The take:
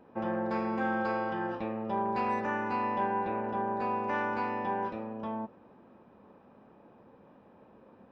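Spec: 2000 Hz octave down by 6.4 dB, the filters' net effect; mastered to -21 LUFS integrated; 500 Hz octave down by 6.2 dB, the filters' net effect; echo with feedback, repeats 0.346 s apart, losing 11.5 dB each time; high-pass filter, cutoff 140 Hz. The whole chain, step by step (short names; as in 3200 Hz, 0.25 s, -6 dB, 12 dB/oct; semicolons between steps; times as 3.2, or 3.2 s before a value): HPF 140 Hz; bell 500 Hz -7.5 dB; bell 2000 Hz -8.5 dB; feedback echo 0.346 s, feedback 27%, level -11.5 dB; gain +15.5 dB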